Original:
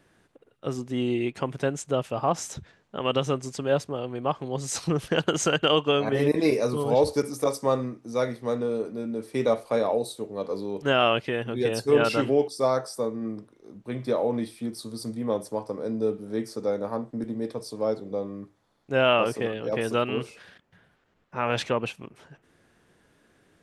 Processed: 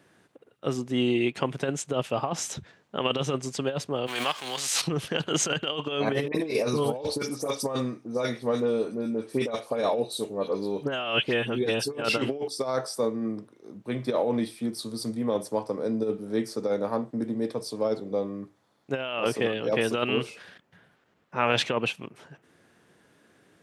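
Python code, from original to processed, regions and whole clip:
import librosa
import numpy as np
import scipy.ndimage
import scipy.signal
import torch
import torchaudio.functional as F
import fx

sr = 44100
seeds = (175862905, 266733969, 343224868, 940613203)

y = fx.envelope_flatten(x, sr, power=0.6, at=(4.06, 4.8), fade=0.02)
y = fx.highpass(y, sr, hz=1300.0, slope=6, at=(4.06, 4.8), fade=0.02)
y = fx.pre_swell(y, sr, db_per_s=54.0, at=(4.06, 4.8), fade=0.02)
y = fx.chain(y, sr, fx.notch(hz=2000.0, q=28.0),
    fx.dispersion(late='highs', ms=70.0, hz=2400.0), at=(6.28, 12.02))
y = fx.over_compress(y, sr, threshold_db=-25.0, ratio=-0.5)
y = fx.dynamic_eq(y, sr, hz=3100.0, q=1.3, threshold_db=-46.0, ratio=4.0, max_db=5)
y = scipy.signal.sosfilt(scipy.signal.butter(2, 110.0, 'highpass', fs=sr, output='sos'), y)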